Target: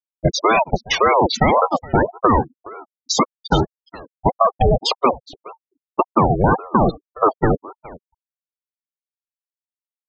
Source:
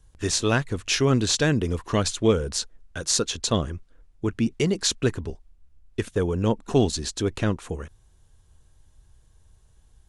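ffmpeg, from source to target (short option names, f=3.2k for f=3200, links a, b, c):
-filter_complex "[0:a]aeval=exprs='val(0)+0.5*0.0335*sgn(val(0))':c=same,asettb=1/sr,asplit=3[a][b][c];[a]atrim=end=1.634[d];[b]atrim=start=1.63:end=4.36,asetpts=PTS-STARTPTS,afade=t=in:d=0.004:c=qsin,afade=t=out:st=2.726:d=0.004:c=qsin,equalizer=f=260:w=4.2:g=-7[e];[c]atrim=start=4.356[f];[d][e]acrossfade=d=0.004:c1=hsin:c2=qsin[g];[g][f]acrossfade=d=0.004:c1=qsin:c2=hsin,agate=range=-24dB:threshold=-21dB:ratio=16:detection=peak,apsyclip=26dB,lowpass=f=3.4k:p=1,acompressor=threshold=-8dB:ratio=12,afftfilt=real='re*gte(hypot(re,im),0.708)':imag='im*gte(hypot(re,im),0.708)':win_size=1024:overlap=0.75,lowshelf=f=77:g=-6.5,aecho=1:1:418:0.0891,aeval=exprs='val(0)*sin(2*PI*570*n/s+570*0.6/1.8*sin(2*PI*1.8*n/s))':c=same"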